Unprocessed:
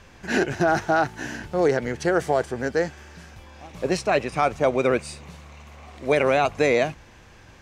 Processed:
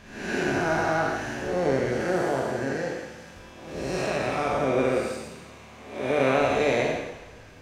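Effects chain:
spectrum smeared in time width 263 ms
pitch-shifted copies added +7 semitones −14 dB
coupled-rooms reverb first 0.92 s, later 2.4 s, DRR 1 dB
level −1 dB

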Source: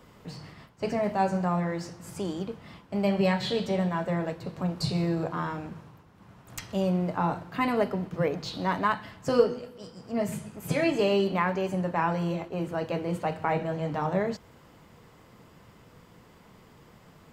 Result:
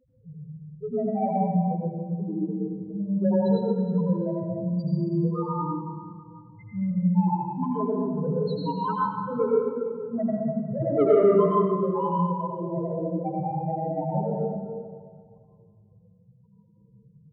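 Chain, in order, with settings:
chorus effect 1.3 Hz, delay 15.5 ms, depth 4.8 ms
in parallel at −12 dB: log-companded quantiser 2 bits
on the sum: spectral peaks only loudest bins 1
0:10.18–0:11.43: parametric band 440 Hz +14 dB 0.32 octaves
soft clipping −22 dBFS, distortion −15 dB
convolution reverb RT60 2.0 s, pre-delay 73 ms, DRR −5.5 dB
level +4 dB

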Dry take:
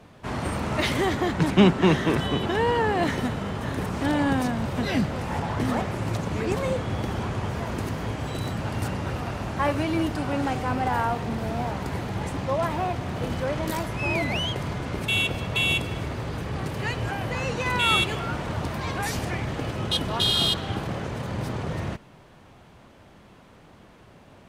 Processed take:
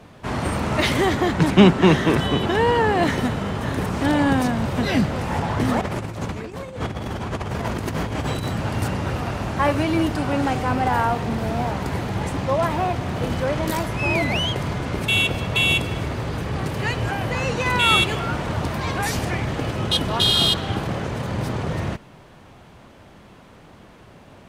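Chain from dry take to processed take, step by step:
0:05.81–0:08.43: compressor whose output falls as the input rises −31 dBFS, ratio −0.5
level +4.5 dB

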